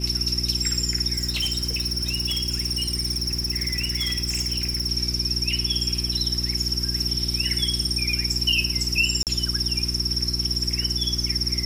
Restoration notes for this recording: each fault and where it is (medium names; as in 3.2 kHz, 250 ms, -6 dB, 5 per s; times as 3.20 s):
hum 60 Hz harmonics 6 -29 dBFS
1.15–4.87 s: clipped -20.5 dBFS
9.23–9.27 s: dropout 38 ms